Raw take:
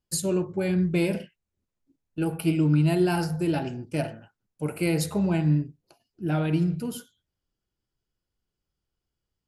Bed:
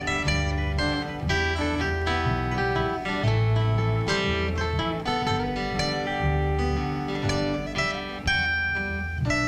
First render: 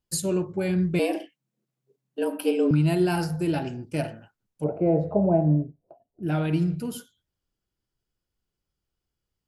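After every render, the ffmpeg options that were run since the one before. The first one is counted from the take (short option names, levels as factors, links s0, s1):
-filter_complex "[0:a]asettb=1/sr,asplit=3[s0][s1][s2];[s0]atrim=end=0.994[s3];[s1]atrim=start=0.99:end=2.71,asetpts=PTS-STARTPTS,afade=t=in:d=0.004:c=qsin,afade=t=out:st=1.716:d=0.004:c=qsin,afreqshift=130[s4];[s2]atrim=start=2.706[s5];[s3][s4]acrossfade=d=0.004:c1=hsin:c2=qsin[s6];[s6][s5]acrossfade=d=0.004:c1=qsin:c2=hsin,asettb=1/sr,asplit=3[s7][s8][s9];[s7]atrim=end=4.644[s10];[s8]atrim=start=4.64:end=6.23,asetpts=PTS-STARTPTS,afade=t=in:d=0.004:c=qsin,afade=t=out:st=1.586:d=0.004:c=qsin,lowpass=f=650:t=q:w=4.9[s11];[s9]atrim=start=6.226[s12];[s10][s11]acrossfade=d=0.004:c1=hsin:c2=qsin[s13];[s13][s12]acrossfade=d=0.004:c1=qsin:c2=hsin"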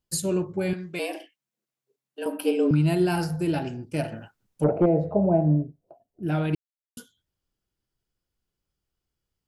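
-filter_complex "[0:a]asettb=1/sr,asplit=3[s0][s1][s2];[s0]atrim=end=0.734[s3];[s1]atrim=start=0.73:end=2.26,asetpts=PTS-STARTPTS,afade=t=in:d=0.004:c=qsin,afade=t=out:st=1.526:d=0.004:c=qsin,highpass=f=880:p=1[s4];[s2]atrim=start=2.256[s5];[s3][s4]acrossfade=d=0.004:c1=hsin:c2=qsin[s6];[s6][s5]acrossfade=d=0.004:c1=qsin:c2=hsin,asettb=1/sr,asplit=3[s7][s8][s9];[s7]atrim=end=4.124[s10];[s8]atrim=start=4.12:end=4.86,asetpts=PTS-STARTPTS,afade=t=in:d=0.004:c=qsin,afade=t=out:st=0.736:d=0.004:c=qsin,aeval=exprs='0.224*sin(PI/2*1.41*val(0)/0.224)':c=same[s11];[s9]atrim=start=4.856[s12];[s10][s11]acrossfade=d=0.004:c1=hsin:c2=qsin[s13];[s13][s12]acrossfade=d=0.004:c1=qsin:c2=hsin,asplit=3[s14][s15][s16];[s14]atrim=end=6.55,asetpts=PTS-STARTPTS,afade=t=out:st=6.546:d=0.004:c=hsin[s17];[s15]atrim=start=6.55:end=6.97,asetpts=PTS-STARTPTS,volume=0[s18];[s16]atrim=start=6.97,asetpts=PTS-STARTPTS,afade=t=in:d=0.004:c=hsin[s19];[s17][s18][s19]concat=n=3:v=0:a=1"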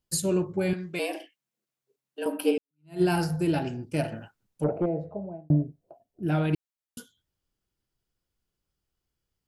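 -filter_complex "[0:a]asplit=3[s0][s1][s2];[s0]atrim=end=2.58,asetpts=PTS-STARTPTS,afade=t=out:st=2.576:d=0.004:c=hsin[s3];[s1]atrim=start=2.58:end=5.5,asetpts=PTS-STARTPTS,afade=t=in:d=0.44:c=exp,afade=t=out:st=1.5:d=1.42[s4];[s2]atrim=start=5.5,asetpts=PTS-STARTPTS,afade=t=in:d=0.004:c=hsin[s5];[s3][s4][s5]concat=n=3:v=0:a=1"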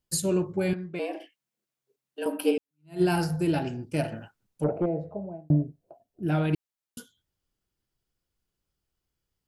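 -filter_complex "[0:a]asplit=3[s0][s1][s2];[s0]afade=t=out:st=0.73:d=0.02[s3];[s1]lowpass=f=1300:p=1,afade=t=in:st=0.73:d=0.02,afade=t=out:st=1.2:d=0.02[s4];[s2]afade=t=in:st=1.2:d=0.02[s5];[s3][s4][s5]amix=inputs=3:normalize=0"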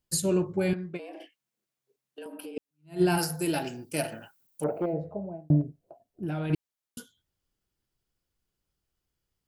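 -filter_complex "[0:a]asplit=3[s0][s1][s2];[s0]afade=t=out:st=0.96:d=0.02[s3];[s1]acompressor=threshold=0.0126:ratio=10:attack=3.2:release=140:knee=1:detection=peak,afade=t=in:st=0.96:d=0.02,afade=t=out:st=2.56:d=0.02[s4];[s2]afade=t=in:st=2.56:d=0.02[s5];[s3][s4][s5]amix=inputs=3:normalize=0,asplit=3[s6][s7][s8];[s6]afade=t=out:st=3.17:d=0.02[s9];[s7]aemphasis=mode=production:type=bsi,afade=t=in:st=3.17:d=0.02,afade=t=out:st=4.92:d=0.02[s10];[s8]afade=t=in:st=4.92:d=0.02[s11];[s9][s10][s11]amix=inputs=3:normalize=0,asettb=1/sr,asplit=3[s12][s13][s14];[s12]atrim=end=5.614[s15];[s13]atrim=start=5.61:end=6.5,asetpts=PTS-STARTPTS,afade=t=in:d=0.004:c=qsin,afade=t=out:st=0.886:d=0.004:c=qsin,acompressor=threshold=0.0398:ratio=6:attack=3.2:release=140:knee=1:detection=peak[s16];[s14]atrim=start=6.496[s17];[s15][s16]acrossfade=d=0.004:c1=hsin:c2=qsin[s18];[s18][s17]acrossfade=d=0.004:c1=qsin:c2=hsin"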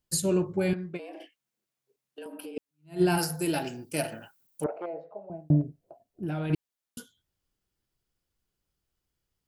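-filter_complex "[0:a]asettb=1/sr,asplit=3[s0][s1][s2];[s0]atrim=end=4.664[s3];[s1]atrim=start=4.66:end=5.3,asetpts=PTS-STARTPTS,afade=t=in:d=0.004:c=qsin,afade=t=out:st=0.636:d=0.004:c=qsin,highpass=630,lowpass=4300[s4];[s2]atrim=start=5.296[s5];[s3][s4]acrossfade=d=0.004:c1=hsin:c2=qsin[s6];[s6][s5]acrossfade=d=0.004:c1=qsin:c2=hsin"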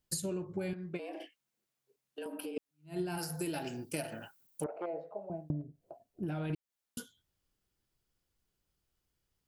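-af "acompressor=threshold=0.0224:ratio=16"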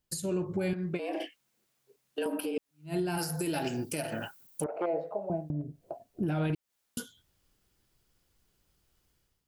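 -af "dynaudnorm=f=130:g=5:m=3.16,alimiter=limit=0.075:level=0:latency=1:release=209"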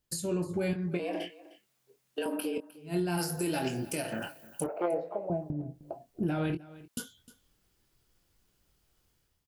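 -filter_complex "[0:a]asplit=2[s0][s1];[s1]adelay=23,volume=0.398[s2];[s0][s2]amix=inputs=2:normalize=0,aecho=1:1:307:0.112"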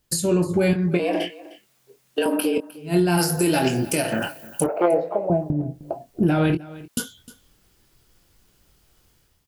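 -af "volume=3.76"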